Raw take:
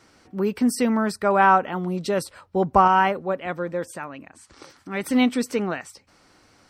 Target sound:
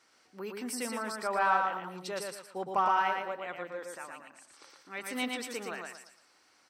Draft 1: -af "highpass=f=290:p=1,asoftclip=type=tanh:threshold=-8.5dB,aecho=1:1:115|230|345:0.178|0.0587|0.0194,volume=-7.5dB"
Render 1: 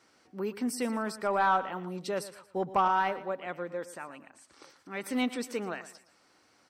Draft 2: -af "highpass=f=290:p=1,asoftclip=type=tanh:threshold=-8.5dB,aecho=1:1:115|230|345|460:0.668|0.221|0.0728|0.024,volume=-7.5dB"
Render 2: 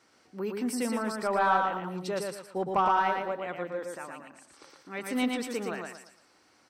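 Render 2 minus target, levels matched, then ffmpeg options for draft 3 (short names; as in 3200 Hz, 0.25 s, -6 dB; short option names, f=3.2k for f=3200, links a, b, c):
250 Hz band +5.5 dB
-af "highpass=f=1k:p=1,asoftclip=type=tanh:threshold=-8.5dB,aecho=1:1:115|230|345|460:0.668|0.221|0.0728|0.024,volume=-7.5dB"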